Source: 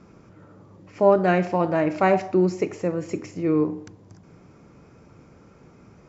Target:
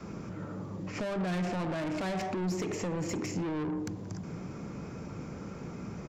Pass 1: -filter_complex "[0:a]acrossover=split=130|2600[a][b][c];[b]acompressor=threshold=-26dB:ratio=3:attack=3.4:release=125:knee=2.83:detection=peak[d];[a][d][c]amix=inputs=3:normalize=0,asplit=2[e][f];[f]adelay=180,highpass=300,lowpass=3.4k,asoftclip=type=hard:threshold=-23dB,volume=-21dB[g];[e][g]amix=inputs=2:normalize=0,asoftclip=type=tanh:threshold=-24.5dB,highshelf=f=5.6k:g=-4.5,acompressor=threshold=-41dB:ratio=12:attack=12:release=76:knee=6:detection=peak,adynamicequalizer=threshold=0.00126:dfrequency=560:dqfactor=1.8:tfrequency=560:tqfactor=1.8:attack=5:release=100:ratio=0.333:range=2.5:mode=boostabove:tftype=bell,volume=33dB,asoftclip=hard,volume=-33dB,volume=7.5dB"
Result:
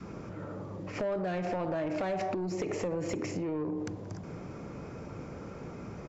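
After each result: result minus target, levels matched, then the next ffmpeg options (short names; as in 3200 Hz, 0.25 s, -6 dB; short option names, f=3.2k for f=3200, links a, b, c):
soft clip: distortion -7 dB; 8000 Hz band -4.0 dB; 500 Hz band +3.5 dB
-filter_complex "[0:a]acrossover=split=130|2600[a][b][c];[b]acompressor=threshold=-26dB:ratio=3:attack=3.4:release=125:knee=2.83:detection=peak[d];[a][d][c]amix=inputs=3:normalize=0,asplit=2[e][f];[f]adelay=180,highpass=300,lowpass=3.4k,asoftclip=type=hard:threshold=-23dB,volume=-21dB[g];[e][g]amix=inputs=2:normalize=0,asoftclip=type=tanh:threshold=-34dB,highshelf=f=5.6k:g=-4.5,acompressor=threshold=-41dB:ratio=12:attack=12:release=76:knee=6:detection=peak,adynamicequalizer=threshold=0.00126:dfrequency=560:dqfactor=1.8:tfrequency=560:tqfactor=1.8:attack=5:release=100:ratio=0.333:range=2.5:mode=boostabove:tftype=bell,volume=33dB,asoftclip=hard,volume=-33dB,volume=7.5dB"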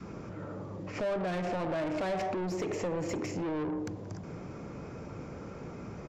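8000 Hz band -4.5 dB; 500 Hz band +3.0 dB
-filter_complex "[0:a]acrossover=split=130|2600[a][b][c];[b]acompressor=threshold=-26dB:ratio=3:attack=3.4:release=125:knee=2.83:detection=peak[d];[a][d][c]amix=inputs=3:normalize=0,asplit=2[e][f];[f]adelay=180,highpass=300,lowpass=3.4k,asoftclip=type=hard:threshold=-23dB,volume=-21dB[g];[e][g]amix=inputs=2:normalize=0,asoftclip=type=tanh:threshold=-34dB,highshelf=f=5.6k:g=3.5,acompressor=threshold=-41dB:ratio=12:attack=12:release=76:knee=6:detection=peak,adynamicequalizer=threshold=0.00126:dfrequency=560:dqfactor=1.8:tfrequency=560:tqfactor=1.8:attack=5:release=100:ratio=0.333:range=2.5:mode=boostabove:tftype=bell,volume=33dB,asoftclip=hard,volume=-33dB,volume=7.5dB"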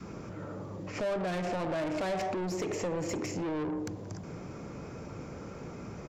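500 Hz band +3.0 dB
-filter_complex "[0:a]acrossover=split=130|2600[a][b][c];[b]acompressor=threshold=-26dB:ratio=3:attack=3.4:release=125:knee=2.83:detection=peak[d];[a][d][c]amix=inputs=3:normalize=0,asplit=2[e][f];[f]adelay=180,highpass=300,lowpass=3.4k,asoftclip=type=hard:threshold=-23dB,volume=-21dB[g];[e][g]amix=inputs=2:normalize=0,asoftclip=type=tanh:threshold=-34dB,highshelf=f=5.6k:g=3.5,acompressor=threshold=-41dB:ratio=12:attack=12:release=76:knee=6:detection=peak,adynamicequalizer=threshold=0.00126:dfrequency=190:dqfactor=1.8:tfrequency=190:tqfactor=1.8:attack=5:release=100:ratio=0.333:range=2.5:mode=boostabove:tftype=bell,volume=33dB,asoftclip=hard,volume=-33dB,volume=7.5dB"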